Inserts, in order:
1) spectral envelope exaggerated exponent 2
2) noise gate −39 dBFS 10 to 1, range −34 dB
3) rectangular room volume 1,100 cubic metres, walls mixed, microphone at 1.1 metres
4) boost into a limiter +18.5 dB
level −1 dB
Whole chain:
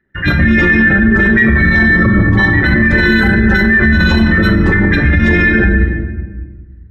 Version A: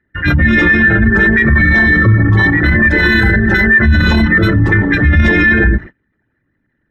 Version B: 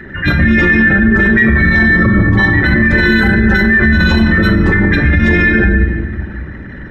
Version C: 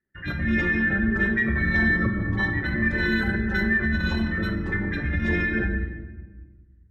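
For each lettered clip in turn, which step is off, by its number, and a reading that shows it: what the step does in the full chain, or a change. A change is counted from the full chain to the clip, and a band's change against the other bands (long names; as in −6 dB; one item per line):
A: 3, change in momentary loudness spread −2 LU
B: 2, change in momentary loudness spread +4 LU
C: 4, change in crest factor +6.0 dB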